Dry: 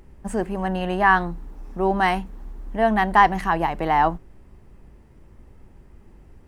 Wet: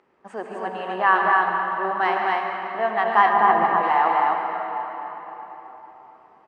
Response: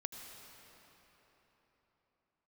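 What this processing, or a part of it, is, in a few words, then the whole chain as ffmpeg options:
station announcement: -filter_complex "[0:a]highpass=49,highpass=460,lowpass=3600,equalizer=f=1200:t=o:w=0.35:g=6,aecho=1:1:142.9|212.8|256.6:0.316|0.282|0.794[s0];[1:a]atrim=start_sample=2205[s1];[s0][s1]afir=irnorm=-1:irlink=0,asplit=3[s2][s3][s4];[s2]afade=t=out:st=3.32:d=0.02[s5];[s3]aemphasis=mode=reproduction:type=riaa,afade=t=in:st=3.32:d=0.02,afade=t=out:st=3.82:d=0.02[s6];[s4]afade=t=in:st=3.82:d=0.02[s7];[s5][s6][s7]amix=inputs=3:normalize=0"

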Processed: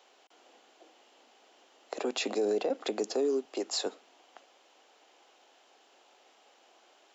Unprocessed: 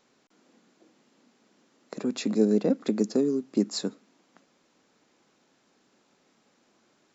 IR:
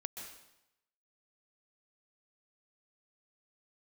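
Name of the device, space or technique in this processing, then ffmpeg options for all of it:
laptop speaker: -filter_complex "[0:a]highpass=f=370:w=0.5412,highpass=f=370:w=1.3066,equalizer=f=750:t=o:w=0.54:g=9,equalizer=f=3000:t=o:w=0.45:g=9,alimiter=limit=0.0631:level=0:latency=1:release=30,asettb=1/sr,asplit=3[s0][s1][s2];[s0]atrim=end=3.454[s3];[s1]atrim=start=3.45:end=3.86,asetpts=PTS-STARTPTS,afade=t=in:d=0.004:c=qsin,afade=t=out:st=0.406:d=0.004:c=qsin,highpass=350[s4];[s2]atrim=start=3.856[s5];[s3][s4]acrossfade=d=0.004:c1=hsin:c2=qsin[s6];[s6][s5]acrossfade=d=0.004:c1=qsin:c2=hsin,volume=1.33"

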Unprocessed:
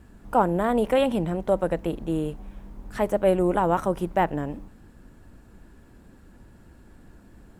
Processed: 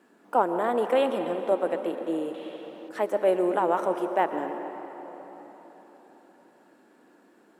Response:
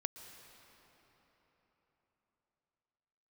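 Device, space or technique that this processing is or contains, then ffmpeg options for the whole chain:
swimming-pool hall: -filter_complex "[1:a]atrim=start_sample=2205[s0];[0:a][s0]afir=irnorm=-1:irlink=0,highpass=f=280:w=0.5412,highpass=f=280:w=1.3066,highshelf=f=5100:g=-6,asettb=1/sr,asplit=3[s1][s2][s3];[s1]atrim=end=2.344[s4];[s2]atrim=start=2.34:end=2.89,asetpts=PTS-STARTPTS,afade=t=in:d=0.004:c=qsin,afade=t=out:st=0.546:d=0.004:c=qsin,equalizer=f=3500:t=o:w=1.1:g=14[s5];[s3]atrim=start=2.886[s6];[s4][s5]acrossfade=d=0.004:c1=hsin:c2=qsin[s7];[s7][s6]acrossfade=d=0.004:c1=qsin:c2=hsin"

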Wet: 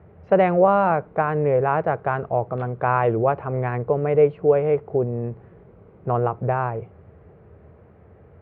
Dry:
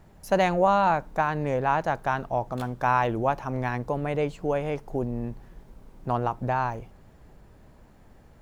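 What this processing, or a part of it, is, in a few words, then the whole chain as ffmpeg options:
bass cabinet: -af "highpass=f=74:w=0.5412,highpass=f=74:w=1.3066,equalizer=f=85:t=q:w=4:g=8,equalizer=f=260:t=q:w=4:g=-9,equalizer=f=440:t=q:w=4:g=8,equalizer=f=910:t=q:w=4:g=-7,equalizer=f=1700:t=q:w=4:g=-6,lowpass=f=2100:w=0.5412,lowpass=f=2100:w=1.3066,volume=1.88"

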